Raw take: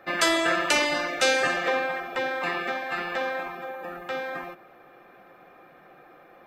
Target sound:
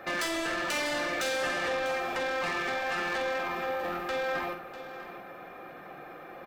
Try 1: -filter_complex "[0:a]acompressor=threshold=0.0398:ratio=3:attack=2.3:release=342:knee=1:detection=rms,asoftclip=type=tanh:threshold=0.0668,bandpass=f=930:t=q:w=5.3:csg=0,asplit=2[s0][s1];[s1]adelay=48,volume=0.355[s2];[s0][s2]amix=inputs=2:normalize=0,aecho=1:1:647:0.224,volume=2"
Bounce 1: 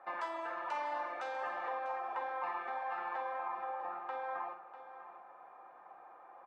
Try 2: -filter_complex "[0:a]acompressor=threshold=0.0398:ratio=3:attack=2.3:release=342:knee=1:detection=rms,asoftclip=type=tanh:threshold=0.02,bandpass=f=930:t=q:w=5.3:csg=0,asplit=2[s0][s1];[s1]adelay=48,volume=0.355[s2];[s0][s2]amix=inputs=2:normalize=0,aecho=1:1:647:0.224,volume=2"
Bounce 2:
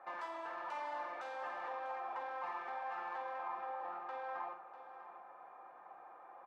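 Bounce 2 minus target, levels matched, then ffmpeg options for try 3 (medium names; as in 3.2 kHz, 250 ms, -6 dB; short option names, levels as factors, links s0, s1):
1 kHz band +6.5 dB
-filter_complex "[0:a]acompressor=threshold=0.0398:ratio=3:attack=2.3:release=342:knee=1:detection=rms,asoftclip=type=tanh:threshold=0.02,asplit=2[s0][s1];[s1]adelay=48,volume=0.355[s2];[s0][s2]amix=inputs=2:normalize=0,aecho=1:1:647:0.224,volume=2"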